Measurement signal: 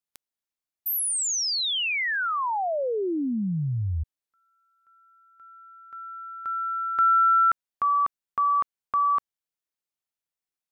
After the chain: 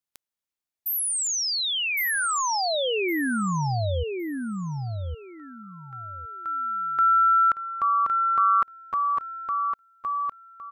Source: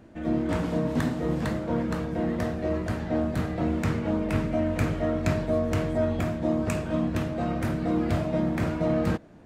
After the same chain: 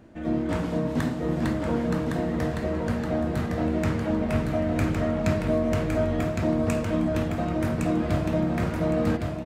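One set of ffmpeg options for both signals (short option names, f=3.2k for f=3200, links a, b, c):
-af "aecho=1:1:1111|2222|3333:0.631|0.139|0.0305"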